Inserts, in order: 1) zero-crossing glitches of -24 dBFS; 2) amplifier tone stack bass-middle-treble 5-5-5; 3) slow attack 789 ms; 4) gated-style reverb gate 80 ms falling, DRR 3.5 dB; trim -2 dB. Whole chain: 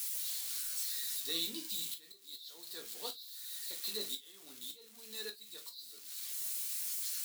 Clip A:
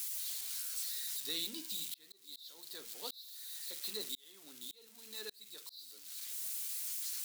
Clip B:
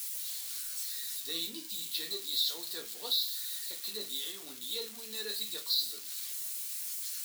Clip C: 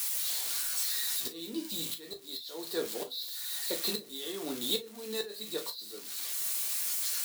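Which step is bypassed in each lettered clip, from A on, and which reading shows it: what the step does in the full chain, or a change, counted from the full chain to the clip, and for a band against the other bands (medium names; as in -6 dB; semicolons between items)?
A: 4, loudness change -2.0 LU; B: 3, 4 kHz band +4.5 dB; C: 2, 4 kHz band -5.5 dB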